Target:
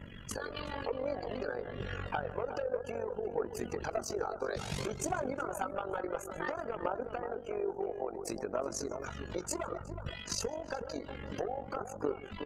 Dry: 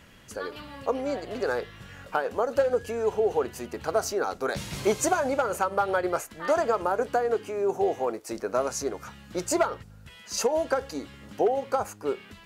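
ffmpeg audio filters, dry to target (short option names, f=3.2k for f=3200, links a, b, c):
-filter_complex "[0:a]asplit=2[a][b];[b]aecho=0:1:141:0.133[c];[a][c]amix=inputs=2:normalize=0,asoftclip=type=hard:threshold=-18.5dB,acompressor=threshold=-38dB:ratio=12,afftdn=nr=23:nf=-56,aphaser=in_gain=1:out_gain=1:delay=2.4:decay=0.4:speed=0.58:type=triangular,asplit=2[d][e];[e]adelay=369,lowpass=f=830:p=1,volume=-6dB,asplit=2[f][g];[g]adelay=369,lowpass=f=830:p=1,volume=0.23,asplit=2[h][i];[i]adelay=369,lowpass=f=830:p=1,volume=0.23[j];[f][h][j]amix=inputs=3:normalize=0[k];[d][k]amix=inputs=2:normalize=0,acontrast=77,aeval=exprs='val(0)+0.00141*(sin(2*PI*50*n/s)+sin(2*PI*2*50*n/s)/2+sin(2*PI*3*50*n/s)/3+sin(2*PI*4*50*n/s)/4+sin(2*PI*5*50*n/s)/5)':c=same,tremolo=f=47:d=0.788"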